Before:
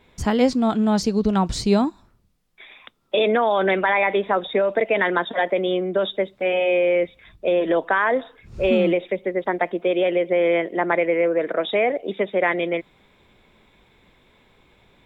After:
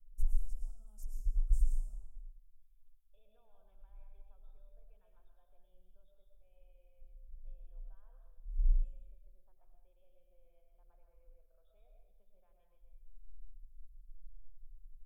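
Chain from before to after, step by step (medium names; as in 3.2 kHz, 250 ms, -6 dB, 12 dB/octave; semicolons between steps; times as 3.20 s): inverse Chebyshev band-stop 130–4400 Hz, stop band 70 dB; distance through air 77 m; reverberation RT60 1.0 s, pre-delay 75 ms, DRR 1.5 dB; trim +15 dB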